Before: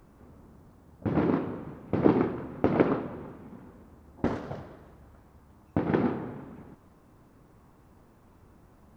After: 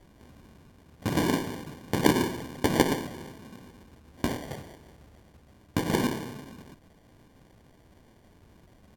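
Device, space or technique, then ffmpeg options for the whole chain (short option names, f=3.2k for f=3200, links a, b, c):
crushed at another speed: -af "highshelf=f=1.7k:t=q:w=3:g=7,asetrate=55125,aresample=44100,acrusher=samples=27:mix=1:aa=0.000001,asetrate=35280,aresample=44100"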